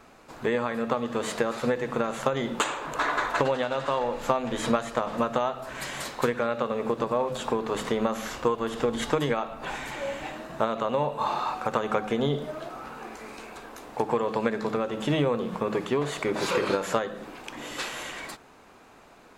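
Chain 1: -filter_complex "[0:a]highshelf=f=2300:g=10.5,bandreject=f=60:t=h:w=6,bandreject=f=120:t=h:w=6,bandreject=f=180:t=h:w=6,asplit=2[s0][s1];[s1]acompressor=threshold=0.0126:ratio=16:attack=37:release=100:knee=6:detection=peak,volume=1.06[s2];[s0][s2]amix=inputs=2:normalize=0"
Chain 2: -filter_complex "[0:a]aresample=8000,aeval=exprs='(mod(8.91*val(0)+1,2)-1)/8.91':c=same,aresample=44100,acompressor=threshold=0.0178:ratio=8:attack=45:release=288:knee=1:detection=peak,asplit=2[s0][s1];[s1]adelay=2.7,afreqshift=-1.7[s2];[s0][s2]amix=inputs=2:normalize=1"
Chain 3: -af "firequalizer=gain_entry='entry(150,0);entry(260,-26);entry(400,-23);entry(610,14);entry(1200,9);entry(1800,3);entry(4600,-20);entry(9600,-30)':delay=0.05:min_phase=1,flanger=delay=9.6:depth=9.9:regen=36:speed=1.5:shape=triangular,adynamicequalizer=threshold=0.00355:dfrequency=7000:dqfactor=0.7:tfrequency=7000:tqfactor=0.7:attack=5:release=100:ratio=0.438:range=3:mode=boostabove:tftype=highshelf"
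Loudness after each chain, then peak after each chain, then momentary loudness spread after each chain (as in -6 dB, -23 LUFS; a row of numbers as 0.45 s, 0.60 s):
-24.5 LUFS, -39.5 LUFS, -25.5 LUFS; -2.5 dBFS, -20.5 dBFS, -5.0 dBFS; 9 LU, 6 LU, 13 LU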